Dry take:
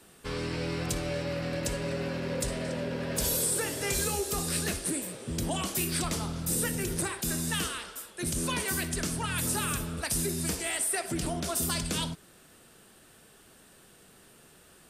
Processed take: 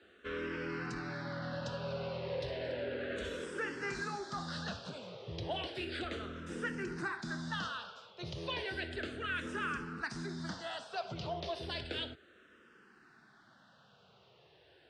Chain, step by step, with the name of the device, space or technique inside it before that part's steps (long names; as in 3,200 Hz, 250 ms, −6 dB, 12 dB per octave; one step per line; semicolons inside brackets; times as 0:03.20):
barber-pole phaser into a guitar amplifier (frequency shifter mixed with the dry sound −0.33 Hz; soft clipping −23.5 dBFS, distortion −22 dB; loudspeaker in its box 100–4,300 Hz, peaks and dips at 170 Hz −5 dB, 270 Hz −4 dB, 1,500 Hz +6 dB, 2,300 Hz −4 dB)
level −1.5 dB